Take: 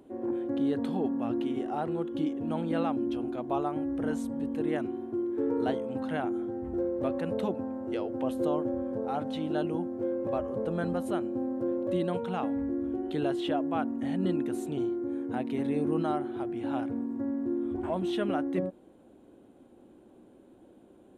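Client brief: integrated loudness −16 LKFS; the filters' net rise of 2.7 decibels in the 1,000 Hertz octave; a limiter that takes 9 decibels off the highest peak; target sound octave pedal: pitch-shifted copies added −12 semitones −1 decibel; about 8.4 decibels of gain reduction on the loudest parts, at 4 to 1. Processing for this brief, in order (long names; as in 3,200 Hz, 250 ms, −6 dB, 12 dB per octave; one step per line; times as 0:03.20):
parametric band 1,000 Hz +4 dB
downward compressor 4 to 1, threshold −34 dBFS
brickwall limiter −31.5 dBFS
pitch-shifted copies added −12 semitones −1 dB
level +21.5 dB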